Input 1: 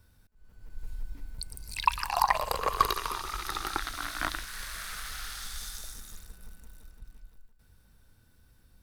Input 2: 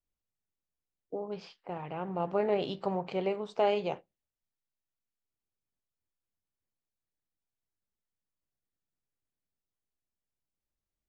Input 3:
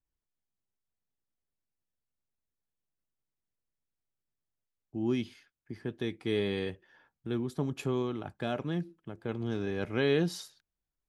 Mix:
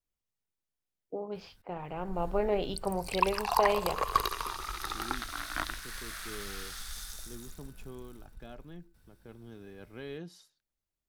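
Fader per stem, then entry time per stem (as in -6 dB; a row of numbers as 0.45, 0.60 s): -2.5, -0.5, -15.0 dB; 1.35, 0.00, 0.00 s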